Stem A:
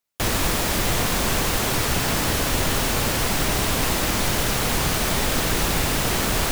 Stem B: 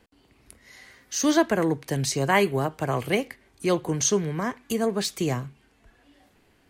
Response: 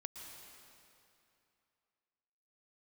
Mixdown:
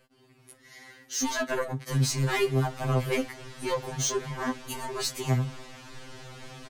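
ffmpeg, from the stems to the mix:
-filter_complex "[0:a]lowpass=6200,adelay=1700,volume=-20dB[link_01];[1:a]asoftclip=type=tanh:threshold=-21.5dB,volume=2dB[link_02];[link_01][link_02]amix=inputs=2:normalize=0,afftfilt=real='re*2.45*eq(mod(b,6),0)':imag='im*2.45*eq(mod(b,6),0)':win_size=2048:overlap=0.75"

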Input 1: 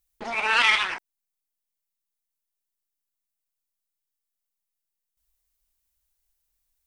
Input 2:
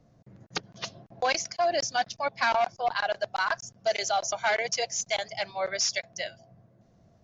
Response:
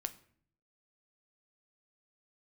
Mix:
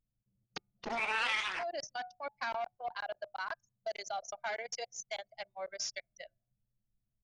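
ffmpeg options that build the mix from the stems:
-filter_complex "[0:a]adelay=650,volume=-2dB[link_01];[1:a]bandreject=frequency=122:width_type=h:width=4,bandreject=frequency=244:width_type=h:width=4,bandreject=frequency=366:width_type=h:width=4,bandreject=frequency=488:width_type=h:width=4,bandreject=frequency=610:width_type=h:width=4,bandreject=frequency=732:width_type=h:width=4,bandreject=frequency=854:width_type=h:width=4,bandreject=frequency=976:width_type=h:width=4,bandreject=frequency=1098:width_type=h:width=4,bandreject=frequency=1220:width_type=h:width=4,bandreject=frequency=1342:width_type=h:width=4,bandreject=frequency=1464:width_type=h:width=4,bandreject=frequency=1586:width_type=h:width=4,bandreject=frequency=1708:width_type=h:width=4,bandreject=frequency=1830:width_type=h:width=4,bandreject=frequency=1952:width_type=h:width=4,bandreject=frequency=2074:width_type=h:width=4,bandreject=frequency=2196:width_type=h:width=4,bandreject=frequency=2318:width_type=h:width=4,bandreject=frequency=2440:width_type=h:width=4,bandreject=frequency=2562:width_type=h:width=4,bandreject=frequency=2684:width_type=h:width=4,volume=-10.5dB[link_02];[link_01][link_02]amix=inputs=2:normalize=0,anlmdn=0.631,acompressor=threshold=-33dB:ratio=3"

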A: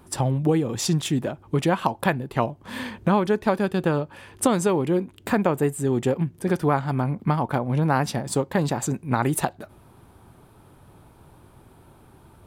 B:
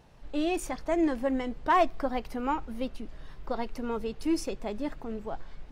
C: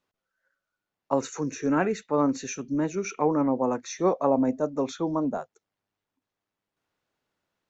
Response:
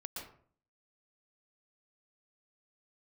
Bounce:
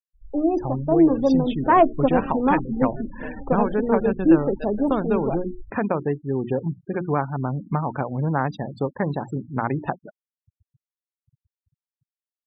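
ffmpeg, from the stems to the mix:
-filter_complex "[0:a]lowpass=3500,adelay=450,volume=-5.5dB[link_01];[1:a]afwtdn=0.0158,equalizer=frequency=260:width=0.35:gain=10.5,volume=-0.5dB[link_02];[2:a]highpass=frequency=210:poles=1,tremolo=f=1.3:d=0.56,acrusher=samples=41:mix=1:aa=0.000001,volume=-11.5dB[link_03];[link_01][link_02][link_03]amix=inputs=3:normalize=0,bandreject=frequency=60:width_type=h:width=6,bandreject=frequency=120:width_type=h:width=6,bandreject=frequency=180:width_type=h:width=6,bandreject=frequency=240:width_type=h:width=6,bandreject=frequency=300:width_type=h:width=6,bandreject=frequency=360:width_type=h:width=6,afftfilt=real='re*gte(hypot(re,im),0.02)':imag='im*gte(hypot(re,im),0.02)':win_size=1024:overlap=0.75,dynaudnorm=framelen=170:gausssize=17:maxgain=4dB"

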